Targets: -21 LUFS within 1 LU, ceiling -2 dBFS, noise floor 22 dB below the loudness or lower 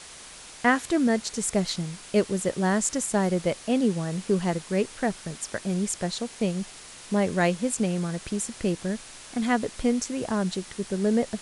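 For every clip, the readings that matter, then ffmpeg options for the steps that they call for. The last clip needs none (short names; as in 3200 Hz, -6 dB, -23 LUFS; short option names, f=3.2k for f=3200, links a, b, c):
noise floor -45 dBFS; noise floor target -49 dBFS; loudness -27.0 LUFS; peak -9.5 dBFS; loudness target -21.0 LUFS
-> -af "afftdn=nr=6:nf=-45"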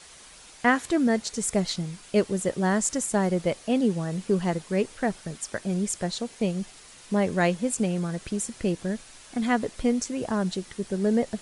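noise floor -49 dBFS; loudness -27.0 LUFS; peak -9.5 dBFS; loudness target -21.0 LUFS
-> -af "volume=6dB"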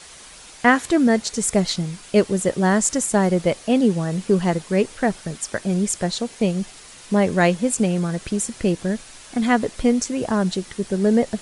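loudness -21.0 LUFS; peak -3.5 dBFS; noise floor -43 dBFS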